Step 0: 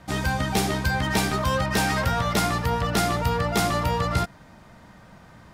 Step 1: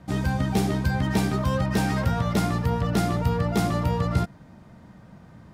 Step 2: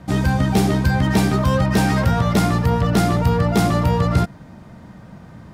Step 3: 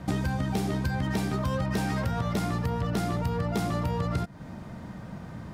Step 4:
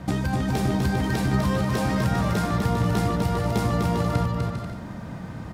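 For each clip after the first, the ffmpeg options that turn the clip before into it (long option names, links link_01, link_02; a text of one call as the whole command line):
ffmpeg -i in.wav -af "equalizer=frequency=160:width=0.32:gain=11,volume=-7.5dB" out.wav
ffmpeg -i in.wav -af "asoftclip=type=tanh:threshold=-13dB,volume=7.5dB" out.wav
ffmpeg -i in.wav -af "acompressor=threshold=-25dB:ratio=10" out.wav
ffmpeg -i in.wav -af "aecho=1:1:250|400|490|544|576.4:0.631|0.398|0.251|0.158|0.1,volume=3dB" out.wav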